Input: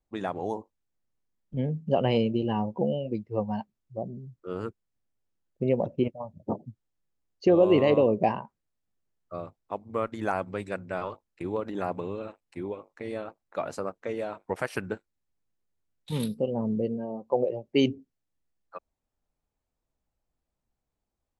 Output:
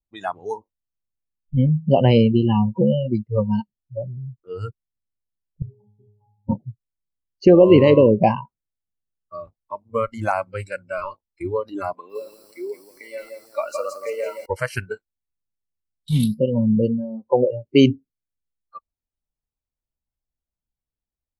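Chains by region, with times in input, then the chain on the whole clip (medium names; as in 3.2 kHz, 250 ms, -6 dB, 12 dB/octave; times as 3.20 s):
5.62–6.49 s: bass shelf 150 Hz +10.5 dB + static phaser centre 350 Hz, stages 8 + pitch-class resonator G#, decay 0.55 s
11.93–14.46 s: high-pass 270 Hz 24 dB/octave + bit-crushed delay 168 ms, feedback 55%, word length 9-bit, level -3 dB
whole clip: spectral noise reduction 21 dB; bass shelf 180 Hz +9.5 dB; trim +7 dB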